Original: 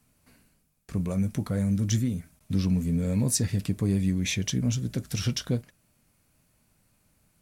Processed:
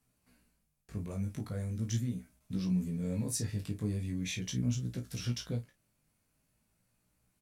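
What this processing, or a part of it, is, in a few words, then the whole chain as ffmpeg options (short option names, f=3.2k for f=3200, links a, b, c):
double-tracked vocal: -filter_complex "[0:a]asplit=2[a][b];[b]adelay=33,volume=-9dB[c];[a][c]amix=inputs=2:normalize=0,flanger=delay=16:depth=3.3:speed=0.41,volume=-6.5dB"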